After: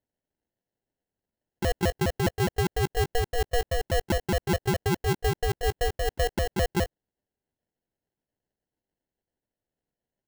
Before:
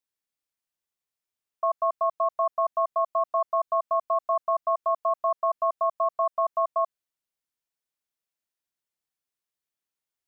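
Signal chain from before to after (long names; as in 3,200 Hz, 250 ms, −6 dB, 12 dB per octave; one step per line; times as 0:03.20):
pitch shifter swept by a sawtooth +4.5 semitones, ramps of 206 ms
sample-rate reduction 1,200 Hz, jitter 0%
level +1 dB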